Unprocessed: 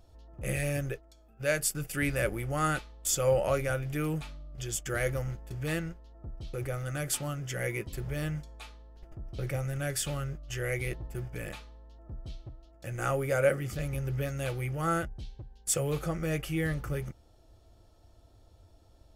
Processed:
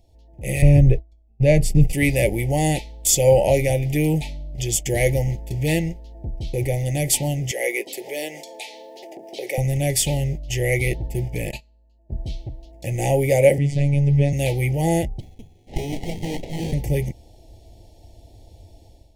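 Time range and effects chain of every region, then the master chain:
0:00.62–0:01.93: downward expander −45 dBFS + RIAA equalisation playback
0:07.51–0:09.58: high-pass filter 370 Hz 24 dB per octave + upward compression, threshold −39 dBFS
0:11.51–0:12.22: EQ curve with evenly spaced ripples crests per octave 1.4, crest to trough 11 dB + noise gate −41 dBFS, range −22 dB
0:13.58–0:14.33: Butterworth low-pass 9,200 Hz + bass and treble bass +5 dB, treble −5 dB + phases set to zero 142 Hz
0:15.20–0:16.73: low-shelf EQ 150 Hz −12 dB + voice inversion scrambler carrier 3,400 Hz + windowed peak hold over 33 samples
whole clip: elliptic band-stop filter 850–2,000 Hz, stop band 60 dB; automatic gain control gain up to 11.5 dB; level +1 dB

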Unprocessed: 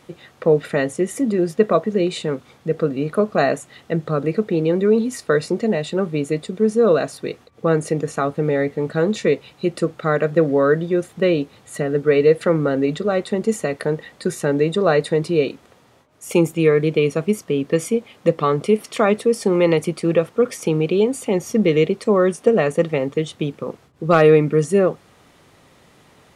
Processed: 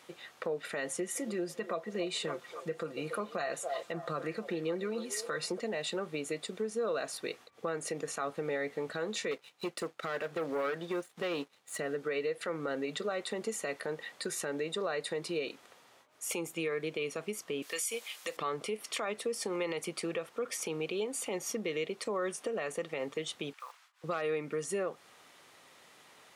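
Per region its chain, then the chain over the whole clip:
0:00.87–0:05.60: comb filter 5.8 ms, depth 55% + echo through a band-pass that steps 280 ms, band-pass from 570 Hz, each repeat 0.7 octaves, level −12 dB
0:09.31–0:11.79: high-pass filter 98 Hz + leveller curve on the samples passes 2 + expander for the loud parts, over −29 dBFS
0:17.62–0:18.37: high-pass filter 220 Hz 6 dB per octave + spectral tilt +4.5 dB per octave
0:23.53–0:24.04: one scale factor per block 7 bits + high-pass filter 1,000 Hz 24 dB per octave + high-shelf EQ 10,000 Hz −6.5 dB
whole clip: downward compressor 5 to 1, threshold −20 dBFS; high-pass filter 1,000 Hz 6 dB per octave; brickwall limiter −22.5 dBFS; level −2.5 dB

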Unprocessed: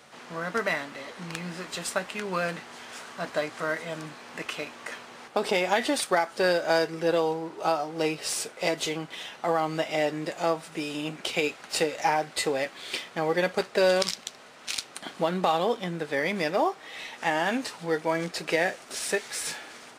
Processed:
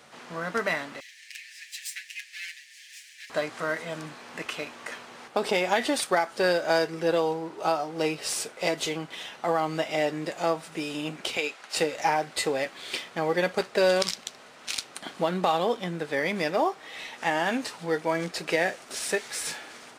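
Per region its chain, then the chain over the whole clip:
0:01.00–0:03.30: lower of the sound and its delayed copy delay 7.2 ms + Chebyshev high-pass with heavy ripple 1,700 Hz, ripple 3 dB
0:11.37–0:11.77: high-pass filter 640 Hz 6 dB per octave + high-shelf EQ 12,000 Hz −9 dB
whole clip: no processing

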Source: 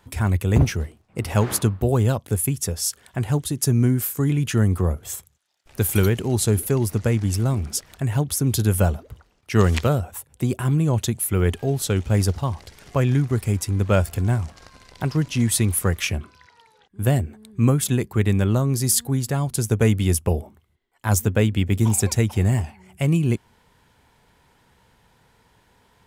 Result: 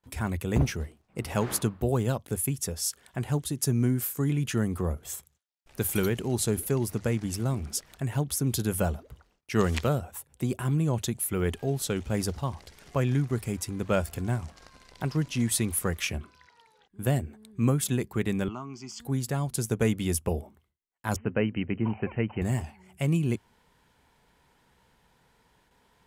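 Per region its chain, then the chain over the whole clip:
0:18.48–0:19.00: high-pass filter 340 Hz + high-frequency loss of the air 170 metres + phaser with its sweep stopped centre 2,600 Hz, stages 8
0:21.16–0:22.42: linear-phase brick-wall low-pass 3,100 Hz + parametric band 70 Hz −9.5 dB
whole clip: noise gate with hold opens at −50 dBFS; parametric band 99 Hz −13.5 dB 0.23 octaves; level −5.5 dB

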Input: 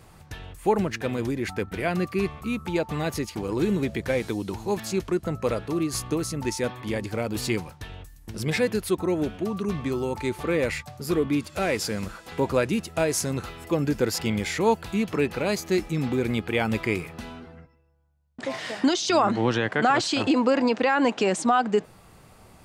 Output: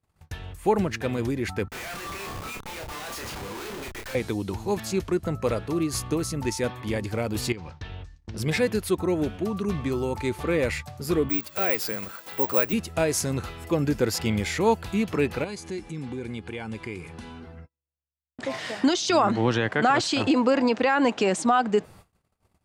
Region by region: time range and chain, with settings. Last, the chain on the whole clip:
0:01.68–0:04.15: high-pass filter 1,000 Hz + comparator with hysteresis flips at −44.5 dBFS + double-tracking delay 30 ms −4 dB
0:07.52–0:08.37: low-pass filter 5,700 Hz 24 dB per octave + downward compressor 16 to 1, threshold −32 dBFS
0:11.29–0:12.73: high-pass filter 460 Hz 6 dB per octave + dynamic equaliser 7,200 Hz, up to −5 dB, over −46 dBFS, Q 0.88 + bad sample-rate conversion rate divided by 2×, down none, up zero stuff
0:15.44–0:17.43: downward compressor 2 to 1, threshold −37 dBFS + notch comb filter 640 Hz + bad sample-rate conversion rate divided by 2×, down none, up filtered
whole clip: noise gate −47 dBFS, range −33 dB; parametric band 79 Hz +6 dB 0.73 octaves

